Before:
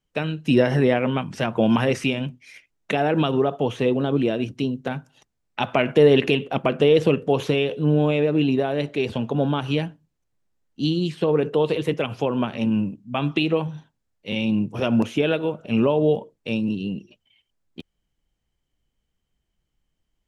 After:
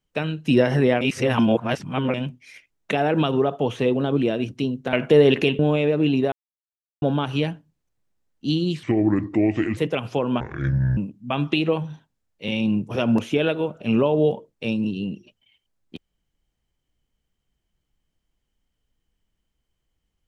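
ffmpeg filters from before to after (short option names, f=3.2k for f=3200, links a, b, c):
-filter_complex "[0:a]asplit=11[a][b][c][d][e][f][g][h][i][j][k];[a]atrim=end=1.012[l];[b]atrim=start=1.008:end=2.142,asetpts=PTS-STARTPTS,areverse[m];[c]atrim=start=2.138:end=4.932[n];[d]atrim=start=5.788:end=6.452[o];[e]atrim=start=7.938:end=8.67,asetpts=PTS-STARTPTS,afade=t=out:st=0.728:d=0.004:c=hsin[p];[f]atrim=start=8.67:end=9.37,asetpts=PTS-STARTPTS,volume=0[q];[g]atrim=start=9.37:end=11.184,asetpts=PTS-STARTPTS,afade=t=in:d=0.004:c=hsin[r];[h]atrim=start=11.18:end=11.84,asetpts=PTS-STARTPTS,asetrate=30870,aresample=44100[s];[i]atrim=start=11.836:end=12.474[t];[j]atrim=start=12.47:end=12.81,asetpts=PTS-STARTPTS,asetrate=26460,aresample=44100[u];[k]atrim=start=12.806[v];[l][m]acrossfade=d=0.004:c1=hsin:c2=hsin[w];[w][n]acrossfade=d=0.004:c1=hsin:c2=hsin[x];[x][o]acrossfade=d=0.004:c1=hsin:c2=hsin[y];[p][q][r]concat=n=3:v=0:a=1[z];[y][z]acrossfade=d=0.004:c1=hsin:c2=hsin[aa];[aa][s]acrossfade=d=0.004:c1=hsin:c2=hsin[ab];[ab][t]acrossfade=d=0.004:c1=hsin:c2=hsin[ac];[ac][u]acrossfade=d=0.004:c1=hsin:c2=hsin[ad];[ad][v]acrossfade=d=0.004:c1=hsin:c2=hsin"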